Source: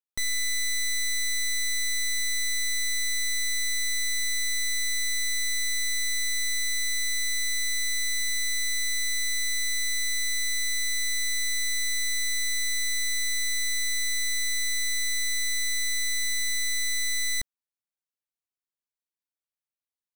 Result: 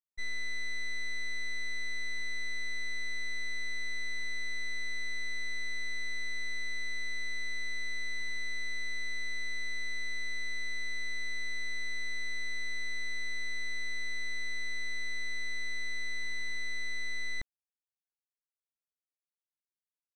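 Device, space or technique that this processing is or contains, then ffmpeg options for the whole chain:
hearing-loss simulation: -af "lowpass=2400,agate=range=0.0224:threshold=0.0562:ratio=3:detection=peak"

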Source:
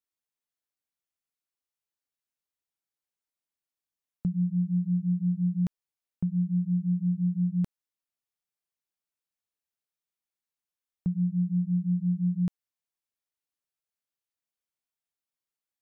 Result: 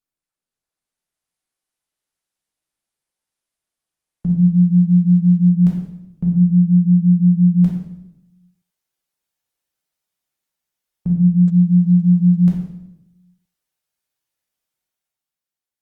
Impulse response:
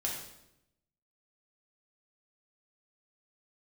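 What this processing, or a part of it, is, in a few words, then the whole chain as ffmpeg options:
speakerphone in a meeting room: -filter_complex "[1:a]atrim=start_sample=2205[s0];[0:a][s0]afir=irnorm=-1:irlink=0,dynaudnorm=f=140:g=13:m=2.66,volume=0.841" -ar 48000 -c:a libopus -b:a 32k

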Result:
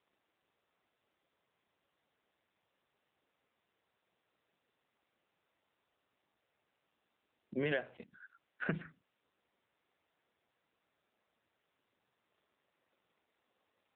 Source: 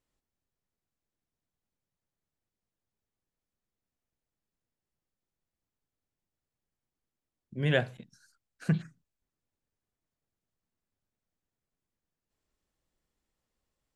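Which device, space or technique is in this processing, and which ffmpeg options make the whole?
voicemail: -af "highpass=360,lowpass=2700,acompressor=threshold=0.00708:ratio=10,volume=3.76" -ar 8000 -c:a libopencore_amrnb -b:a 7950

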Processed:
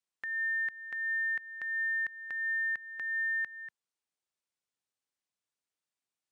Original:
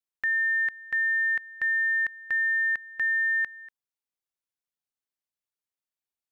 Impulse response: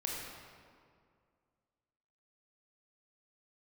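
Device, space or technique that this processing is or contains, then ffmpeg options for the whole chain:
podcast mastering chain: -af "highpass=100,acompressor=threshold=0.0224:ratio=3,alimiter=level_in=2:limit=0.0631:level=0:latency=1:release=251,volume=0.501,volume=1.26" -ar 22050 -c:a libmp3lame -b:a 96k

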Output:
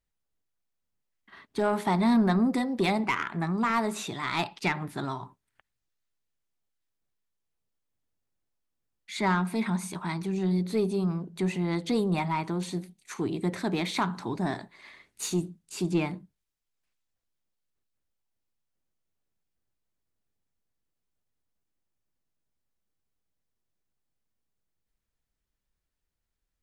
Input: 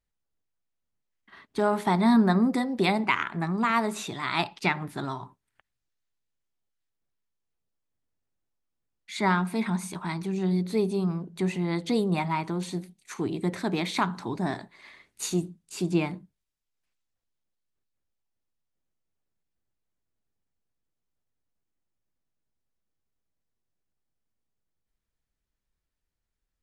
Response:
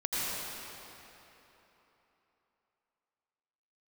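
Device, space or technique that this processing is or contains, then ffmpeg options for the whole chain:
saturation between pre-emphasis and de-emphasis: -af "highshelf=f=2500:g=8.5,asoftclip=type=tanh:threshold=0.158,highshelf=f=2500:g=-8.5"

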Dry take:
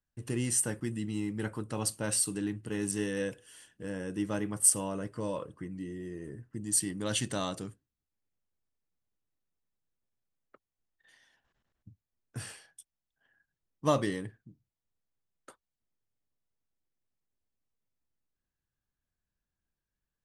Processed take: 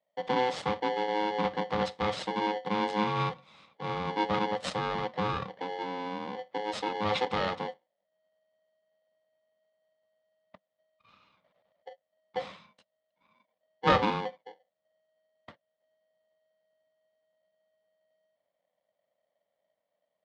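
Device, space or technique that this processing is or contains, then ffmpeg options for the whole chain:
ring modulator pedal into a guitar cabinet: -af "aeval=exprs='val(0)*sgn(sin(2*PI*630*n/s))':c=same,highpass=99,equalizer=f=190:t=q:w=4:g=8,equalizer=f=370:t=q:w=4:g=-8,equalizer=f=550:t=q:w=4:g=8,equalizer=f=1600:t=q:w=4:g=-4,equalizer=f=2500:t=q:w=4:g=-6,lowpass=f=3700:w=0.5412,lowpass=f=3700:w=1.3066,volume=1.68"

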